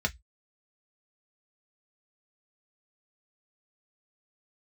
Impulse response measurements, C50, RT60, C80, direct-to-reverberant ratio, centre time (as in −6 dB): 26.5 dB, 0.10 s, 39.5 dB, 3.0 dB, 5 ms